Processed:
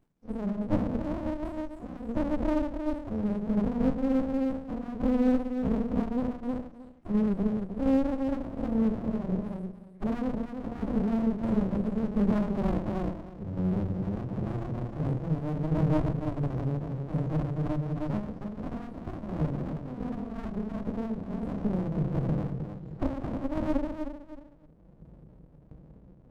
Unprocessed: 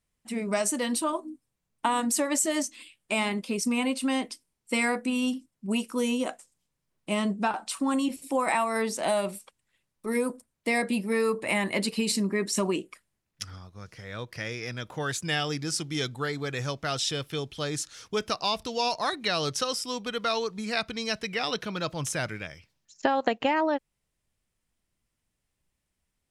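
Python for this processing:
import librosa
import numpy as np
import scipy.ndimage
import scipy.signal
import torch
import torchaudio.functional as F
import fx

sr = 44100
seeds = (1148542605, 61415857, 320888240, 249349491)

p1 = fx.spec_delay(x, sr, highs='early', ms=664)
p2 = fx.recorder_agc(p1, sr, target_db=-21.0, rise_db_per_s=26.0, max_gain_db=30)
p3 = scipy.signal.sosfilt(scipy.signal.cheby2(4, 50, 980.0, 'lowpass', fs=sr, output='sos'), p2)
p4 = fx.room_shoebox(p3, sr, seeds[0], volume_m3=300.0, walls='furnished', distance_m=3.4)
p5 = 10.0 ** (-22.0 / 20.0) * (np.abs((p4 / 10.0 ** (-22.0 / 20.0) + 3.0) % 4.0 - 2.0) - 1.0)
p6 = p4 + F.gain(torch.from_numpy(p5), -11.0).numpy()
p7 = fx.peak_eq(p6, sr, hz=80.0, db=-14.5, octaves=0.32)
p8 = p7 + fx.echo_feedback(p7, sr, ms=311, feedback_pct=22, wet_db=-4.5, dry=0)
p9 = fx.tremolo_shape(p8, sr, shape='saw_down', hz=1.4, depth_pct=45)
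p10 = scipy.signal.sosfilt(scipy.signal.butter(2, 46.0, 'highpass', fs=sr, output='sos'), p9)
p11 = fx.low_shelf(p10, sr, hz=180.0, db=-8.5)
p12 = fx.running_max(p11, sr, window=65)
y = F.gain(torch.from_numpy(p12), 3.0).numpy()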